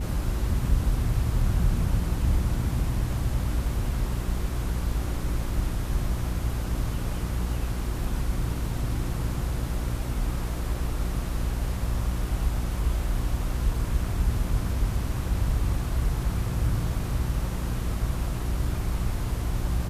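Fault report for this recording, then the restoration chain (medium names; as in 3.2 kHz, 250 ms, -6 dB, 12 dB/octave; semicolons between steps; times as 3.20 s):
hum 60 Hz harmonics 6 -31 dBFS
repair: de-hum 60 Hz, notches 6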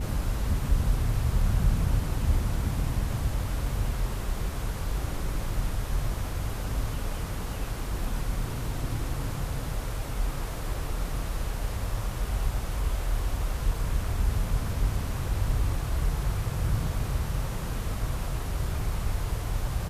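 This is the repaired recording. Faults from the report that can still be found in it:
nothing left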